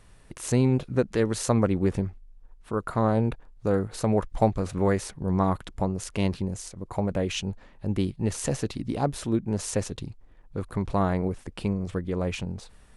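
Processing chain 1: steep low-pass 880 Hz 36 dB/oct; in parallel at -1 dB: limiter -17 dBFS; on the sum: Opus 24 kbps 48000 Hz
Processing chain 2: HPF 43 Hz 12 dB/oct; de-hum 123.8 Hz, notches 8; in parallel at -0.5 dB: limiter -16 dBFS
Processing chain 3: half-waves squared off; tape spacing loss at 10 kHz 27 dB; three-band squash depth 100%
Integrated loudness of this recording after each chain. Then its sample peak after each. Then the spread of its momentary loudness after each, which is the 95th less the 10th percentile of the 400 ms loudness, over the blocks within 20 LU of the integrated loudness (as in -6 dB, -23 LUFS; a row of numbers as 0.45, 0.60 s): -23.5, -23.0, -24.0 LUFS; -7.0, -5.0, -4.5 dBFS; 10, 10, 6 LU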